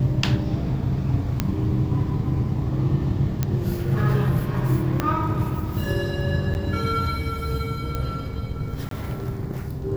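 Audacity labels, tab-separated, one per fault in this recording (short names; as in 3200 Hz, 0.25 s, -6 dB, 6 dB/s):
1.400000	1.400000	pop -7 dBFS
3.430000	3.430000	pop -9 dBFS
5.000000	5.000000	pop -8 dBFS
6.540000	6.550000	gap 9.9 ms
7.950000	7.950000	pop -14 dBFS
8.890000	8.910000	gap 23 ms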